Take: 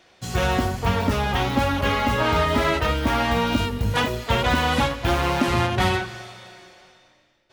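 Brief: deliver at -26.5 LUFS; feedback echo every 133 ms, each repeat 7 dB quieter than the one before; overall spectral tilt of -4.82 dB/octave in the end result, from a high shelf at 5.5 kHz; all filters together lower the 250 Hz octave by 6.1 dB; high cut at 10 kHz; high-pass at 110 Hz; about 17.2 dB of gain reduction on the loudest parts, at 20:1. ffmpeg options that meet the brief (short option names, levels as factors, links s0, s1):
-af "highpass=110,lowpass=10000,equalizer=f=250:t=o:g=-7.5,highshelf=f=5500:g=-8.5,acompressor=threshold=0.0158:ratio=20,aecho=1:1:133|266|399|532|665:0.447|0.201|0.0905|0.0407|0.0183,volume=4.22"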